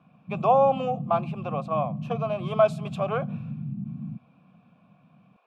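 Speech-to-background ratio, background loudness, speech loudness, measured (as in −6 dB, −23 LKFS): 9.0 dB, −35.0 LKFS, −26.0 LKFS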